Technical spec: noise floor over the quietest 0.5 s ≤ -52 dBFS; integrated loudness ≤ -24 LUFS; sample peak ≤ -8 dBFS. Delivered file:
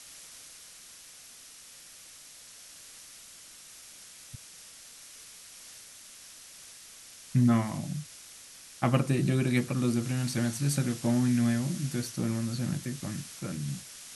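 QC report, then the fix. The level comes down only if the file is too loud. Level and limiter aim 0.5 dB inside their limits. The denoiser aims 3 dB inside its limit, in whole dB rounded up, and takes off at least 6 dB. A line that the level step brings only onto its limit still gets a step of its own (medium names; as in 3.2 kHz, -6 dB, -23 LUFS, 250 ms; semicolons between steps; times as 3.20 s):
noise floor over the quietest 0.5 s -51 dBFS: fail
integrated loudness -29.5 LUFS: pass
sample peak -10.5 dBFS: pass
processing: noise reduction 6 dB, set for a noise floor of -51 dBFS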